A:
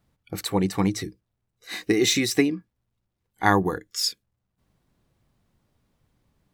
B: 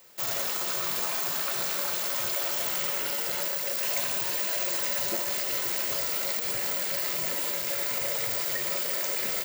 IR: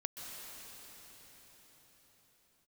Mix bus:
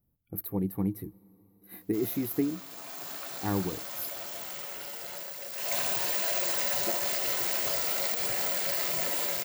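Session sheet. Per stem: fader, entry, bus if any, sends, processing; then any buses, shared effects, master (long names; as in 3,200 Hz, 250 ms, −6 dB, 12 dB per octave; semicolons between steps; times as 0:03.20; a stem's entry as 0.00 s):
−6.5 dB, 0.00 s, send −22 dB, drawn EQ curve 270 Hz 0 dB, 7,200 Hz −27 dB, 12,000 Hz +12 dB
0:02.66 −16.5 dB → 0:03.08 −10 dB → 0:05.51 −10 dB → 0:05.77 −0.5 dB, 1.75 s, no send, parametric band 720 Hz +8 dB 0.23 octaves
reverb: on, pre-delay 119 ms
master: no processing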